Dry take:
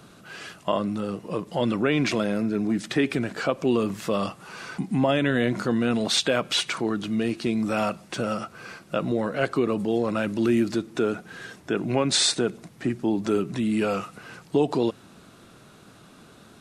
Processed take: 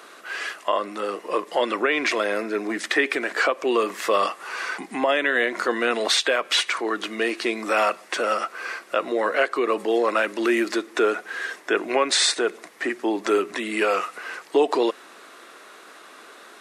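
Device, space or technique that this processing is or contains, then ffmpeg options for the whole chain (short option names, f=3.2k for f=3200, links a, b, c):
laptop speaker: -af "highpass=f=360:w=0.5412,highpass=f=360:w=1.3066,equalizer=f=1.1k:t=o:w=0.27:g=5,equalizer=f=1.9k:t=o:w=0.59:g=8.5,alimiter=limit=-15dB:level=0:latency=1:release=334,volume=5.5dB"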